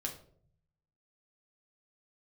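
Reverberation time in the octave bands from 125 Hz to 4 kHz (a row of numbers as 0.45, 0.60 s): 1.2, 0.85, 0.65, 0.45, 0.35, 0.35 s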